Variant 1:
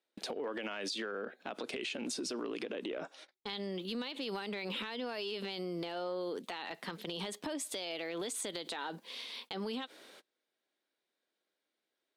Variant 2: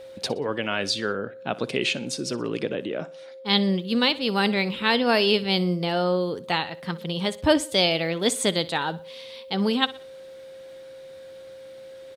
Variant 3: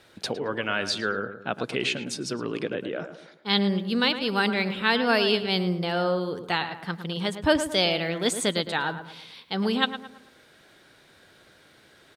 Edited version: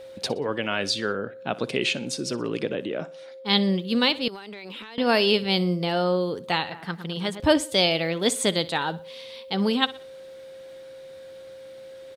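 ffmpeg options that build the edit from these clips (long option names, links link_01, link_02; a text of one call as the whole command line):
ffmpeg -i take0.wav -i take1.wav -i take2.wav -filter_complex "[1:a]asplit=3[link_01][link_02][link_03];[link_01]atrim=end=4.282[link_04];[0:a]atrim=start=4.278:end=4.982[link_05];[link_02]atrim=start=4.978:end=6.722[link_06];[2:a]atrim=start=6.718:end=7.402[link_07];[link_03]atrim=start=7.398[link_08];[link_04][link_05]acrossfade=duration=0.004:curve1=hsin:curve2=hsin[link_09];[link_09][link_06]acrossfade=duration=0.004:curve1=hsin:curve2=hsin[link_10];[link_10][link_07]acrossfade=duration=0.004:curve1=hsin:curve2=hsin[link_11];[link_11][link_08]acrossfade=duration=0.004:curve1=hsin:curve2=hsin" out.wav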